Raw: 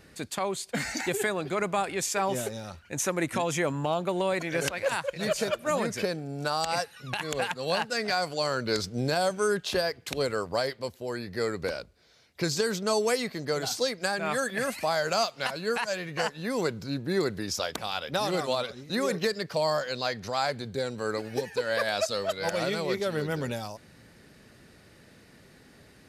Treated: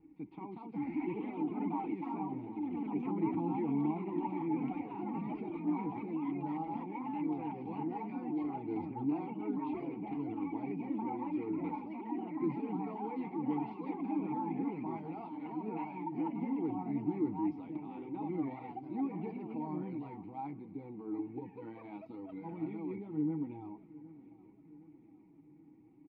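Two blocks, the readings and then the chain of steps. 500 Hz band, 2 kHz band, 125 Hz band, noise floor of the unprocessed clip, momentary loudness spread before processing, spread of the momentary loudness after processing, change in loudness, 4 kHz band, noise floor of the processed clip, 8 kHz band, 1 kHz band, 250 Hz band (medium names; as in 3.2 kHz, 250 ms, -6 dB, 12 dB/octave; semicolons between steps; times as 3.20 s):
-16.0 dB, -24.5 dB, -8.0 dB, -56 dBFS, 6 LU, 11 LU, -9.0 dB, under -35 dB, -59 dBFS, under -40 dB, -9.0 dB, +0.5 dB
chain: tilt EQ -4 dB/octave; comb 6.3 ms, depth 53%; transient shaper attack 0 dB, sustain +7 dB; flange 0.72 Hz, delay 2 ms, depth 8.9 ms, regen -31%; ever faster or slower copies 247 ms, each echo +3 st, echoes 3; vowel filter u; distance through air 430 m; feedback delay 764 ms, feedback 53%, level -19 dB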